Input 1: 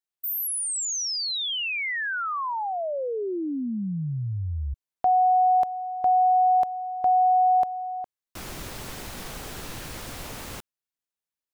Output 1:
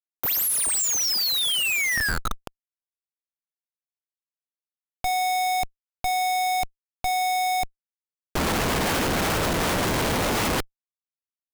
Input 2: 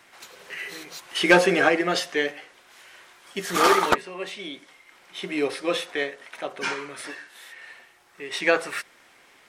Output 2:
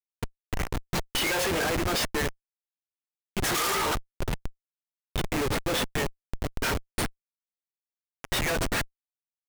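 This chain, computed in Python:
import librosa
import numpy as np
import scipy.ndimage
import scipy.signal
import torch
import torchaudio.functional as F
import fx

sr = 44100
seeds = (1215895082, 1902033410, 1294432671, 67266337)

y = fx.spec_quant(x, sr, step_db=15)
y = fx.riaa(y, sr, side='recording')
y = fx.schmitt(y, sr, flips_db=-24.5)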